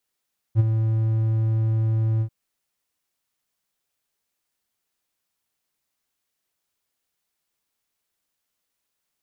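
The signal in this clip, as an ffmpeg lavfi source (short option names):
-f lavfi -i "aevalsrc='0.355*(1-4*abs(mod(111*t+0.25,1)-0.5))':d=1.74:s=44100,afade=t=in:d=0.046,afade=t=out:st=0.046:d=0.025:silence=0.422,afade=t=out:st=1.66:d=0.08"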